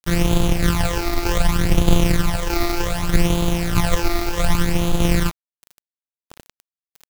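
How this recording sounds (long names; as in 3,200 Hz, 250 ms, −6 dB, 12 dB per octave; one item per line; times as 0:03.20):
a buzz of ramps at a fixed pitch in blocks of 256 samples
tremolo saw down 1.6 Hz, depth 50%
phaser sweep stages 12, 0.66 Hz, lowest notch 160–1,800 Hz
a quantiser's noise floor 6 bits, dither none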